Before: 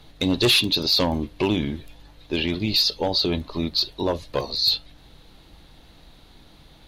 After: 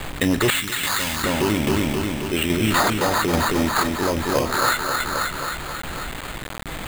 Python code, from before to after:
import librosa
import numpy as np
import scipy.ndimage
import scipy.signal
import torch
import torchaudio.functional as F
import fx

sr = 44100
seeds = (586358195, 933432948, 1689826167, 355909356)

p1 = fx.rattle_buzz(x, sr, strikes_db=-33.0, level_db=-27.0)
p2 = p1 + fx.echo_feedback(p1, sr, ms=267, feedback_pct=54, wet_db=-6.0, dry=0)
p3 = fx.sample_hold(p2, sr, seeds[0], rate_hz=5600.0, jitter_pct=0)
p4 = fx.tremolo_shape(p3, sr, shape='saw_down', hz=1.2, depth_pct=55)
p5 = fx.quant_dither(p4, sr, seeds[1], bits=8, dither='none')
p6 = fx.tone_stack(p5, sr, knobs='5-5-5', at=(0.5, 1.24))
p7 = fx.env_flatten(p6, sr, amount_pct=50)
y = p7 * librosa.db_to_amplitude(2.5)